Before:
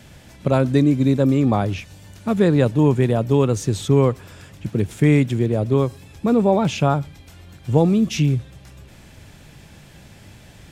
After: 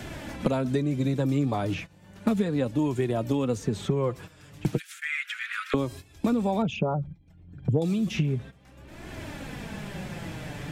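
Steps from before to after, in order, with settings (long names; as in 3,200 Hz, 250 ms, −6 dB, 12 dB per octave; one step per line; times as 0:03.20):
0:06.62–0:07.82: spectral envelope exaggerated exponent 2
noise gate −33 dBFS, range −16 dB
downward compressor 3 to 1, threshold −18 dBFS, peak gain reduction 6.5 dB
0:04.77–0:05.74: Butterworth high-pass 1,300 Hz 72 dB per octave
flanger 0.33 Hz, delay 2.7 ms, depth 4.3 ms, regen +33%
multiband upward and downward compressor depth 100%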